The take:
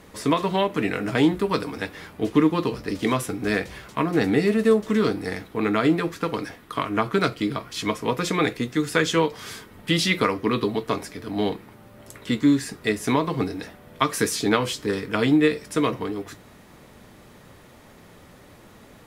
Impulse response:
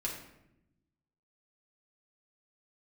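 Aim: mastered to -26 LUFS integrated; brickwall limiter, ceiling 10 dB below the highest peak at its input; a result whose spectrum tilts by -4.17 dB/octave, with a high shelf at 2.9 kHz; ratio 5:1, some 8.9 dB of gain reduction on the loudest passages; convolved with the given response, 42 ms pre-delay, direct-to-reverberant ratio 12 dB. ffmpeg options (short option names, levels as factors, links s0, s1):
-filter_complex "[0:a]highshelf=f=2900:g=4.5,acompressor=threshold=0.0708:ratio=5,alimiter=limit=0.141:level=0:latency=1,asplit=2[s0][s1];[1:a]atrim=start_sample=2205,adelay=42[s2];[s1][s2]afir=irnorm=-1:irlink=0,volume=0.188[s3];[s0][s3]amix=inputs=2:normalize=0,volume=1.5"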